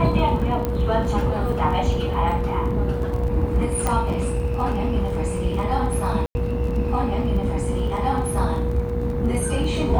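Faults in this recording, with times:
buzz 60 Hz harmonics 37 -27 dBFS
crackle 19 per s -30 dBFS
whine 480 Hz -28 dBFS
0.65 s: pop -11 dBFS
3.87 s: pop -9 dBFS
6.26–6.35 s: dropout 90 ms

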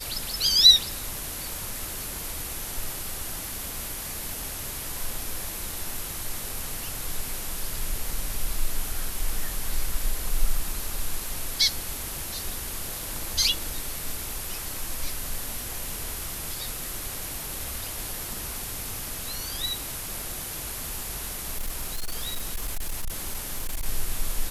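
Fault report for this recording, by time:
21.54–23.86 s: clipped -25 dBFS

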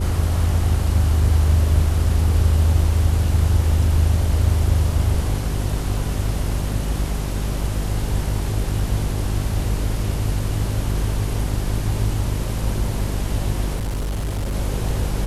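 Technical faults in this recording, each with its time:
hum 50 Hz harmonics 8 -24 dBFS
13.75–14.55 s: clipped -20.5 dBFS

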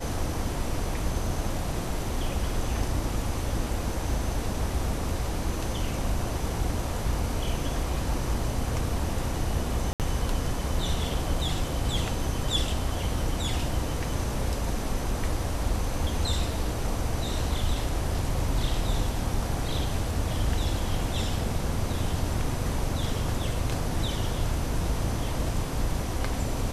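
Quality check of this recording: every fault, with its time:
9.93–10.00 s: dropout 68 ms

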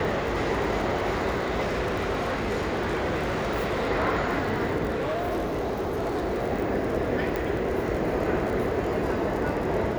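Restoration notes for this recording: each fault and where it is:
crackle 37 per s -31 dBFS
1.62–3.89 s: clipped -23 dBFS
4.89–6.43 s: clipped -24.5 dBFS
7.36 s: pop

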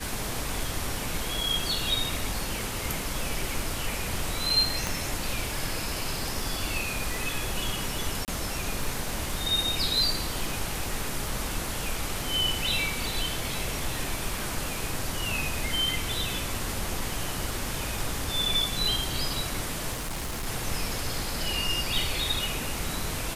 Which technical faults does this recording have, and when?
crackle 34 per s -35 dBFS
4.87 s: pop
8.25–8.28 s: dropout 28 ms
19.92–20.47 s: clipped -29 dBFS

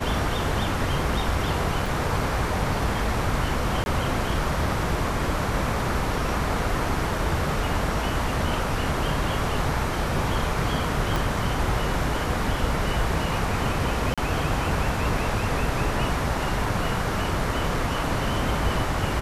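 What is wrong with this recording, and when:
1.86 s: dropout 3.2 ms
3.84–3.86 s: dropout 21 ms
11.16 s: pop
14.14–14.18 s: dropout 36 ms

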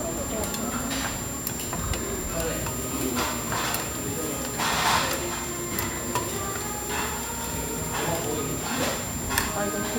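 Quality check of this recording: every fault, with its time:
whine 7.3 kHz -34 dBFS

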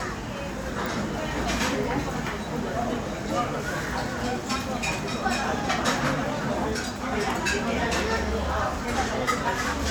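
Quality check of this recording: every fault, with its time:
0.86 s: pop

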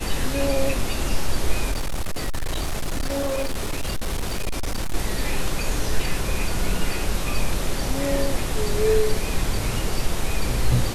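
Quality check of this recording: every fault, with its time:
1.71–4.95 s: clipped -20.5 dBFS

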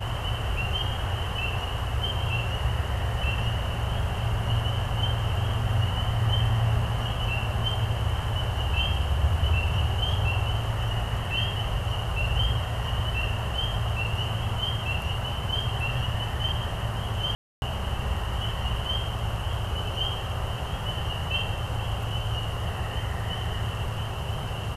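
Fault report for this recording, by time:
17.35–17.62 s: dropout 271 ms

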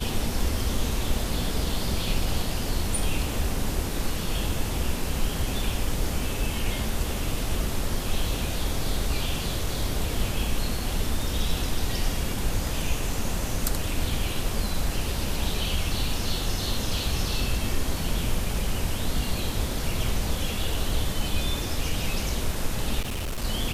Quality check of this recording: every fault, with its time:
23.00–23.45 s: clipped -26.5 dBFS

